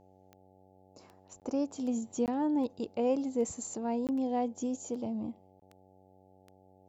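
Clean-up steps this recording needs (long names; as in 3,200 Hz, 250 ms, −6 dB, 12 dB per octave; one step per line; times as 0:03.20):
click removal
hum removal 94.4 Hz, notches 9
repair the gap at 0:01.40/0:02.26/0:04.07/0:05.60, 18 ms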